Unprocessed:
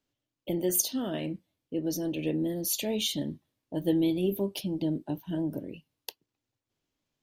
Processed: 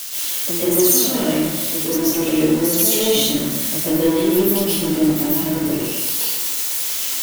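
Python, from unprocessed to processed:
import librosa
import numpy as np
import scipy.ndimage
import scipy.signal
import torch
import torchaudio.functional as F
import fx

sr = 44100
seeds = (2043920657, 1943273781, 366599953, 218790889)

p1 = x + 0.5 * 10.0 ** (-22.5 / 20.0) * np.diff(np.sign(x), prepend=np.sign(x[:1]))
p2 = fx.quant_companded(p1, sr, bits=2)
p3 = p1 + (p2 * 10.0 ** (-11.5 / 20.0))
y = fx.rev_plate(p3, sr, seeds[0], rt60_s=1.3, hf_ratio=0.55, predelay_ms=110, drr_db=-9.0)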